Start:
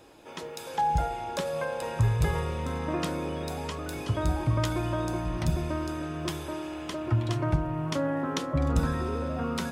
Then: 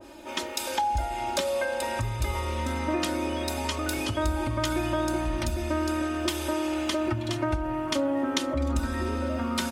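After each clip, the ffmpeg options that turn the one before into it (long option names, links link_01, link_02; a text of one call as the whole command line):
ffmpeg -i in.wav -af "acompressor=threshold=-35dB:ratio=2.5,aecho=1:1:3.3:0.94,adynamicequalizer=threshold=0.00251:dfrequency=1600:dqfactor=0.7:tfrequency=1600:tqfactor=0.7:attack=5:release=100:ratio=0.375:range=2.5:mode=boostabove:tftype=highshelf,volume=4.5dB" out.wav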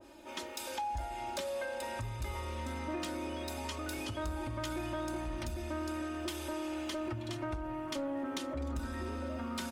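ffmpeg -i in.wav -af "asoftclip=type=tanh:threshold=-21.5dB,volume=-8.5dB" out.wav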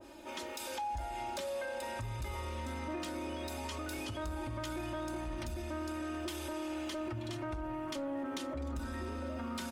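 ffmpeg -i in.wav -af "alimiter=level_in=11.5dB:limit=-24dB:level=0:latency=1:release=80,volume=-11.5dB,volume=2.5dB" out.wav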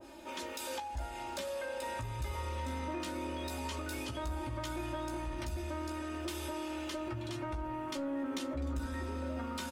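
ffmpeg -i in.wav -filter_complex "[0:a]asplit=2[link_01][link_02];[link_02]adelay=15,volume=-6dB[link_03];[link_01][link_03]amix=inputs=2:normalize=0" out.wav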